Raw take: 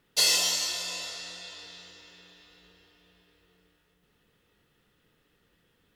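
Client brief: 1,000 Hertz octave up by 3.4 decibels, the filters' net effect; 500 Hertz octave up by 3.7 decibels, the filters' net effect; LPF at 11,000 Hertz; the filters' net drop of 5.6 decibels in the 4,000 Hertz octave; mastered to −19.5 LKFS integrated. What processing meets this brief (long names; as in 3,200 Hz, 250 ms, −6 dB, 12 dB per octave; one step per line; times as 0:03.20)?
low-pass filter 11,000 Hz
parametric band 500 Hz +3.5 dB
parametric band 1,000 Hz +3.5 dB
parametric band 4,000 Hz −7 dB
level +10.5 dB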